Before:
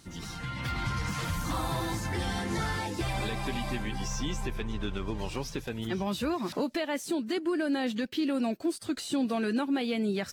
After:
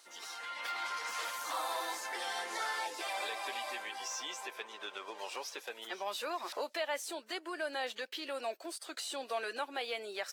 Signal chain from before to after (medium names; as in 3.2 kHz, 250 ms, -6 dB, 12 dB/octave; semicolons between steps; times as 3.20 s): high-pass 520 Hz 24 dB/octave; trim -2 dB